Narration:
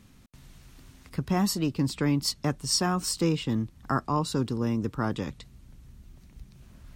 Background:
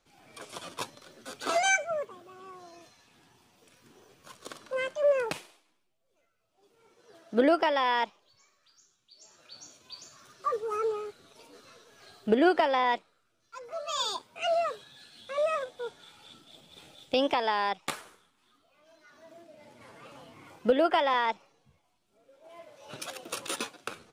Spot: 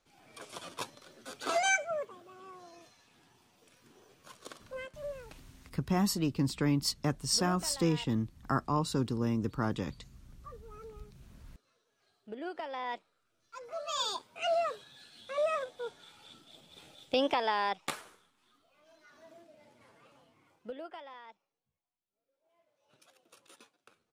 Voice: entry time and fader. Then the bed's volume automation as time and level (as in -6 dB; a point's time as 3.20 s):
4.60 s, -3.5 dB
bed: 4.43 s -3 dB
5.23 s -20 dB
12.32 s -20 dB
13.40 s -2.5 dB
19.24 s -2.5 dB
21.19 s -24 dB